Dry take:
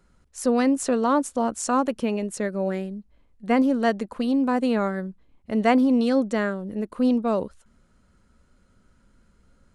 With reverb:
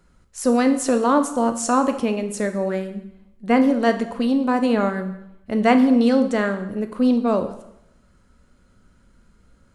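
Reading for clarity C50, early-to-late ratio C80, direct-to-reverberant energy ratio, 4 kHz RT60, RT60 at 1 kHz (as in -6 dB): 11.0 dB, 13.5 dB, 7.0 dB, 0.75 s, 0.80 s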